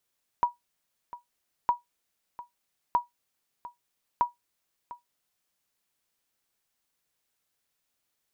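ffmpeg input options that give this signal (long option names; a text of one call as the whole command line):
ffmpeg -f lavfi -i "aevalsrc='0.188*(sin(2*PI*964*mod(t,1.26))*exp(-6.91*mod(t,1.26)/0.15)+0.133*sin(2*PI*964*max(mod(t,1.26)-0.7,0))*exp(-6.91*max(mod(t,1.26)-0.7,0)/0.15))':duration=5.04:sample_rate=44100" out.wav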